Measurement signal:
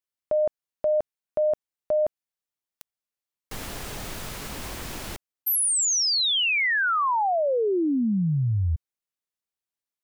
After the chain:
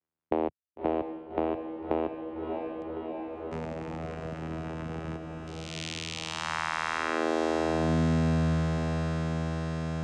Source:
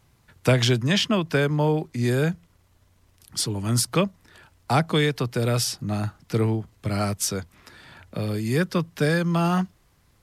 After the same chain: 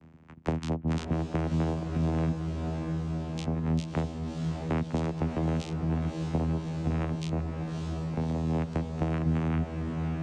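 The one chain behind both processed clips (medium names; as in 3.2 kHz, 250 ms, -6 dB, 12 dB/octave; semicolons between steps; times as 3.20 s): local Wiener filter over 9 samples; reverb removal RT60 0.63 s; bass shelf 140 Hz -4.5 dB; compression, threshold -25 dBFS; vocoder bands 4, saw 80.5 Hz; on a send: echo that smears into a reverb 608 ms, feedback 72%, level -7 dB; on the sum: three bands compressed up and down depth 40%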